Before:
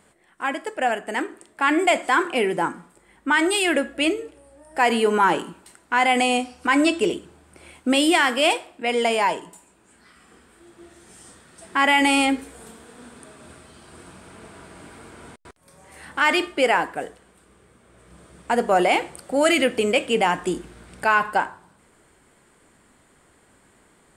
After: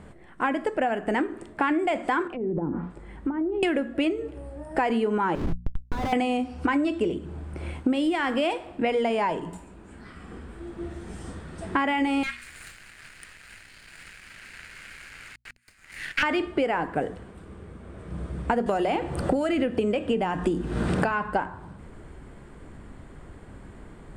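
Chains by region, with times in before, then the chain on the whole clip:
2.27–3.63 treble ducked by the level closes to 420 Hz, closed at -19.5 dBFS + compressor 12:1, threshold -34 dBFS
5.35–6.13 compressor, threshold -23 dBFS + Schmitt trigger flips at -34.5 dBFS
12.23–16.23 minimum comb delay 0.44 ms + steep high-pass 1400 Hz + sample leveller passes 2
18.66–21.11 notch 2200 Hz, Q 11 + three-band squash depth 100%
whole clip: RIAA curve playback; notches 60/120/180/240 Hz; compressor 12:1, threshold -28 dBFS; gain +6.5 dB

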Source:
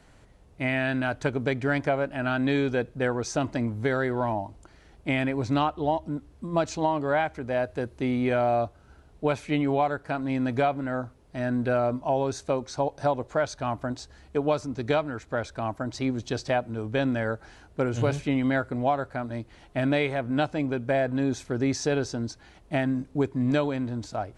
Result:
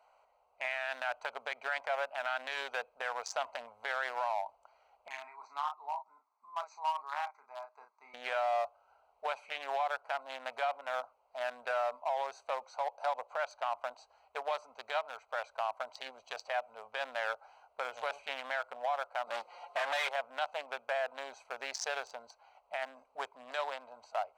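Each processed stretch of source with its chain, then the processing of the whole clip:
5.08–8.14 speaker cabinet 460–6800 Hz, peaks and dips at 720 Hz -9 dB, 1500 Hz -9 dB, 2600 Hz -3 dB + fixed phaser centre 1300 Hz, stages 4 + doubler 35 ms -6 dB
19.27–20.09 band shelf 1300 Hz -8.5 dB 2.7 oct + comb 5.7 ms, depth 61% + overdrive pedal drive 27 dB, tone 1900 Hz, clips at -15 dBFS
whole clip: Wiener smoothing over 25 samples; inverse Chebyshev high-pass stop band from 350 Hz, stop band 40 dB; limiter -27.5 dBFS; gain +3.5 dB

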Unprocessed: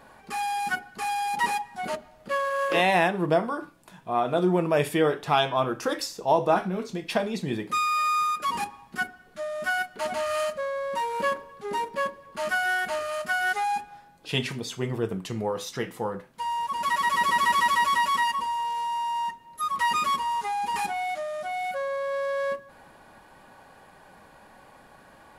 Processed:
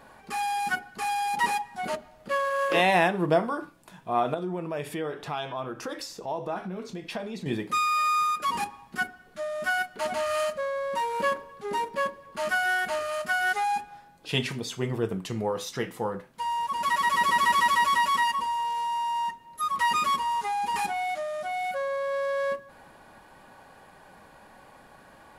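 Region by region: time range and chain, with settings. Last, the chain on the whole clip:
4.34–7.46 high shelf 6300 Hz -4.5 dB + compressor 2:1, threshold -36 dBFS
whole clip: dry

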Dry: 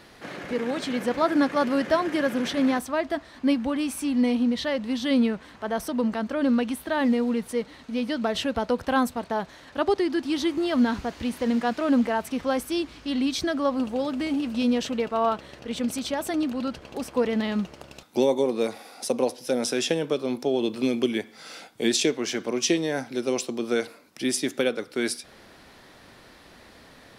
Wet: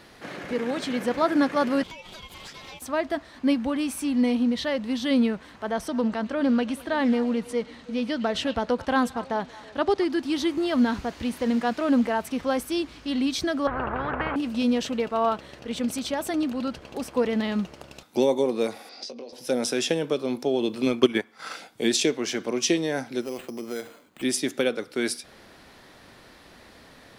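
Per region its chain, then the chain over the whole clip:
1.83–2.82 Bessel high-pass 970 Hz, order 4 + ring modulator 1600 Hz + compressor 10:1, threshold -37 dBFS
5.71–10.05 LPF 9800 Hz + delay with a stepping band-pass 0.108 s, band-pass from 3100 Hz, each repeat -1.4 oct, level -11.5 dB + Doppler distortion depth 0.1 ms
13.67–14.36 LPF 1200 Hz 24 dB/oct + spectral compressor 10:1
18.89–19.33 compressor 20:1, threshold -34 dBFS + speaker cabinet 180–5700 Hz, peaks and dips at 870 Hz -7 dB, 1300 Hz -6 dB, 4800 Hz +10 dB + doubler 21 ms -7.5 dB
20.86–21.56 bell 1200 Hz +11 dB 1.3 oct + transient shaper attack +6 dB, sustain -10 dB
23.21–24.23 LPF 3200 Hz + compressor 2:1, threshold -34 dBFS + careless resampling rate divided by 8×, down none, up hold
whole clip: dry

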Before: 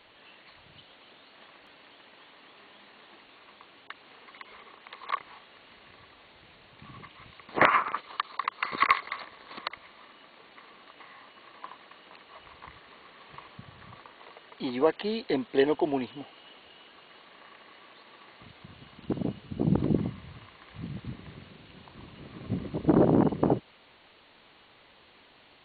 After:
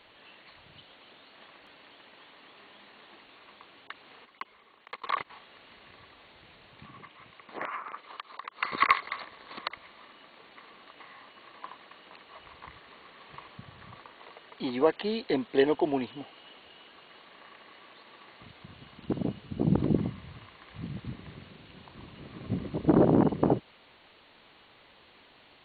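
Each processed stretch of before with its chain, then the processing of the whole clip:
4.25–5.3 gate -44 dBFS, range -43 dB + fast leveller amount 50%
6.86–8.57 HPF 230 Hz 6 dB/oct + air absorption 160 m + compressor 2.5:1, threshold -39 dBFS
whole clip: dry

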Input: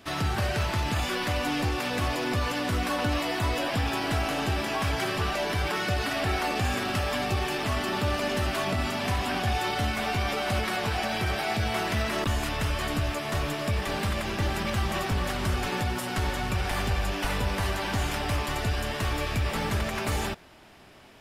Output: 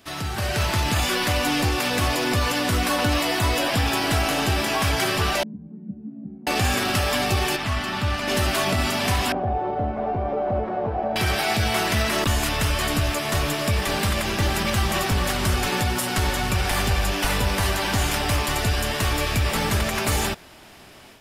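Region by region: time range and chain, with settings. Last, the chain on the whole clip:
5.43–6.47 Butterworth band-pass 200 Hz, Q 3 + doubler 14 ms -4 dB
7.56–8.28 LPF 2700 Hz 6 dB/oct + bell 440 Hz -10.5 dB 1.3 oct
9.32–11.16 synth low-pass 610 Hz, resonance Q 1.7 + low shelf 380 Hz -4.5 dB
whole clip: high shelf 4400 Hz +7.5 dB; AGC gain up to 7.5 dB; gain -2.5 dB

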